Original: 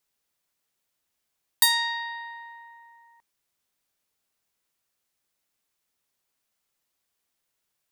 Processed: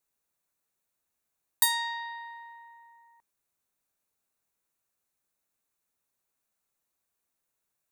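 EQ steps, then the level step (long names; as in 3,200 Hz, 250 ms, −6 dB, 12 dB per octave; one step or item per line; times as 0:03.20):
thirty-one-band graphic EQ 2,000 Hz −4 dB, 3,150 Hz −9 dB, 5,000 Hz −8 dB
−2.5 dB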